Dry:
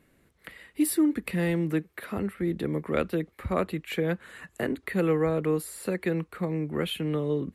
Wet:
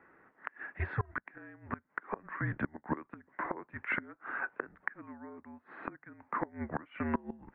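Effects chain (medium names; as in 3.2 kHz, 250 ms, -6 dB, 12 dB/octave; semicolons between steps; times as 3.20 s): mistuned SSB -220 Hz 560–2100 Hz; inverted gate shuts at -30 dBFS, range -26 dB; trim +10 dB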